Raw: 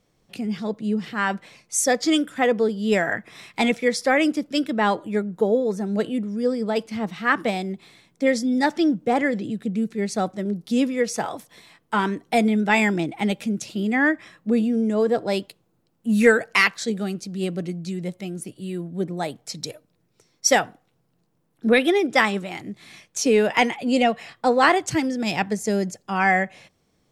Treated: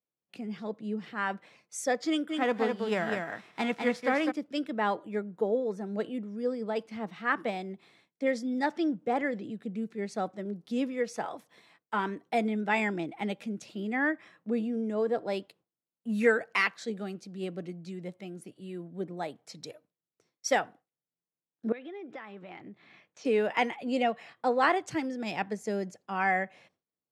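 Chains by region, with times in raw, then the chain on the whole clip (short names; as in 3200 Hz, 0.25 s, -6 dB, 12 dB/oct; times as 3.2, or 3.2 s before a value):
2.29–4.3 spectral whitening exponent 0.6 + LPF 3300 Hz 6 dB/oct + echo 0.204 s -4.5 dB
21.72–23.25 LPF 3100 Hz + compressor 8:1, threshold -31 dBFS
whole clip: gate with hold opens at -40 dBFS; HPF 280 Hz 6 dB/oct; high shelf 4100 Hz -12 dB; gain -6.5 dB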